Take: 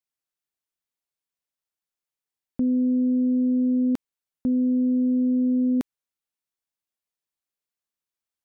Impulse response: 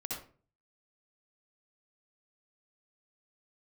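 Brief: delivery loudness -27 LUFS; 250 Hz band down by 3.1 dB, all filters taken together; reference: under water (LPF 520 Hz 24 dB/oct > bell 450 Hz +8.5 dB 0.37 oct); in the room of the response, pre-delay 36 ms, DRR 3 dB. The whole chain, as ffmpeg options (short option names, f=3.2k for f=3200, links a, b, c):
-filter_complex "[0:a]equalizer=f=250:t=o:g=-3.5,asplit=2[a][b];[1:a]atrim=start_sample=2205,adelay=36[c];[b][c]afir=irnorm=-1:irlink=0,volume=-4dB[d];[a][d]amix=inputs=2:normalize=0,lowpass=f=520:w=0.5412,lowpass=f=520:w=1.3066,equalizer=f=450:t=o:w=0.37:g=8.5,volume=-2.5dB"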